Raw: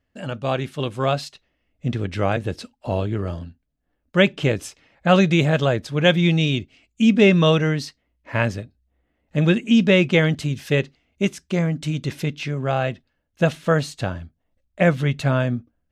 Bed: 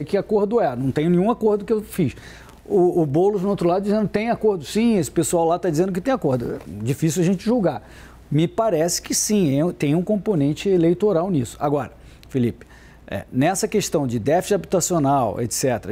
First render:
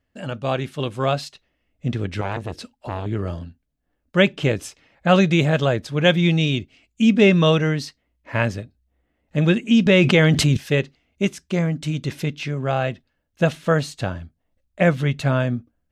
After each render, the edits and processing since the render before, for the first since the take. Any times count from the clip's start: 2.21–3.06 core saturation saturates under 980 Hz; 9.86–10.57 fast leveller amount 70%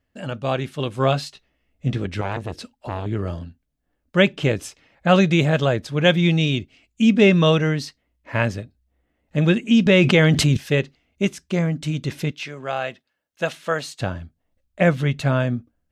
0.96–2.06 doubler 15 ms -6 dB; 12.31–14 HPF 690 Hz 6 dB/oct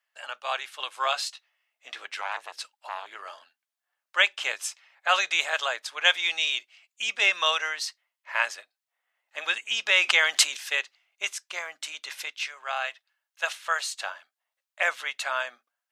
HPF 870 Hz 24 dB/oct; dynamic EQ 7900 Hz, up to +5 dB, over -42 dBFS, Q 0.9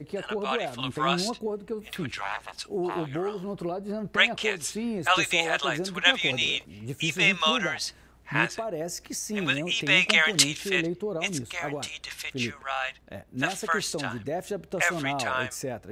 add bed -13 dB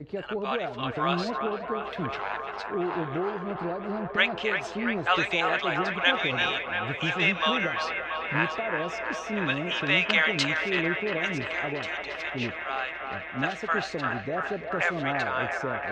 air absorption 200 m; on a send: band-limited delay 0.341 s, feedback 82%, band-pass 1100 Hz, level -4.5 dB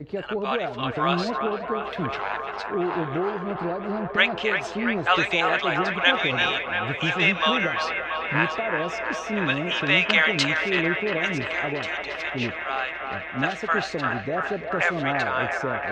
gain +3.5 dB

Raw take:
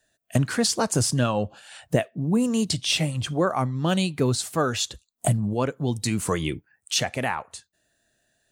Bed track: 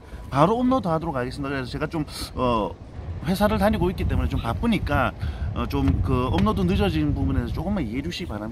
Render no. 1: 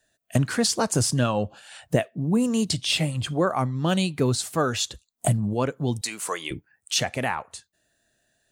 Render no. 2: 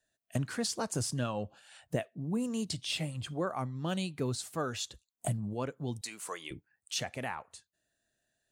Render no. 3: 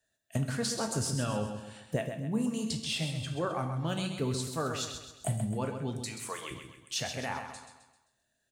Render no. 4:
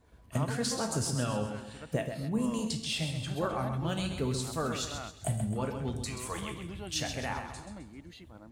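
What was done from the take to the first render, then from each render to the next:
2.87–3.59 notch 5800 Hz, Q 8.7; 6.01–6.51 HPF 600 Hz
gain -11 dB
feedback echo 0.131 s, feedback 44%, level -8 dB; two-slope reverb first 0.52 s, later 1.7 s, from -27 dB, DRR 5.5 dB
add bed track -20.5 dB

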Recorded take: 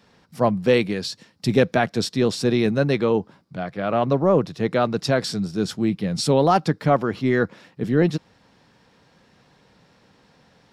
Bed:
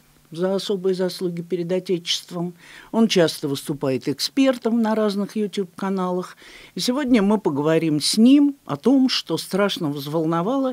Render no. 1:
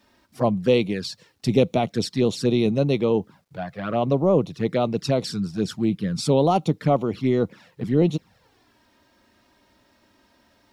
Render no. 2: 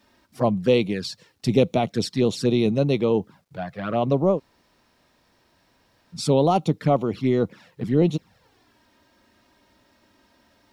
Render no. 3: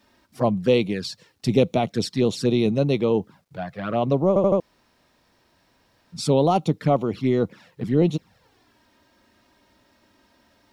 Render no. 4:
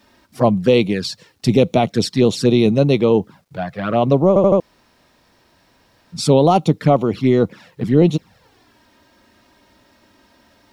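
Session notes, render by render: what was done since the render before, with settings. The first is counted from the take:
envelope flanger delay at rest 3.3 ms, full sweep at -17 dBFS; bit-crush 12-bit
4.35–6.17 room tone, crossfade 0.10 s
4.28 stutter in place 0.08 s, 4 plays
gain +6.5 dB; limiter -3 dBFS, peak gain reduction 3 dB

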